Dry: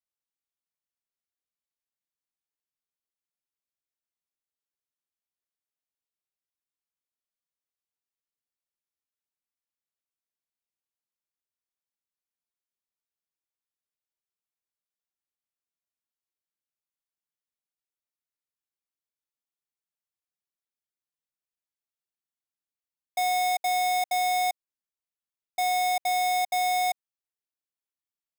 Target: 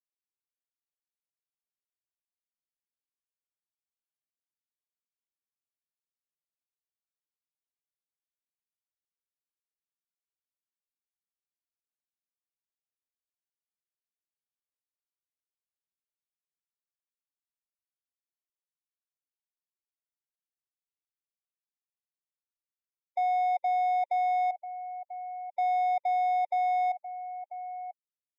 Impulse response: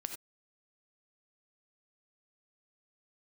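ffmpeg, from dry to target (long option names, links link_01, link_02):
-filter_complex "[0:a]asplit=2[link_01][link_02];[link_02]adelay=991.3,volume=-11dB,highshelf=frequency=4000:gain=-22.3[link_03];[link_01][link_03]amix=inputs=2:normalize=0,afftfilt=real='re*gte(hypot(re,im),0.0141)':imag='im*gte(hypot(re,im),0.0141)':win_size=1024:overlap=0.75,lowpass=1200"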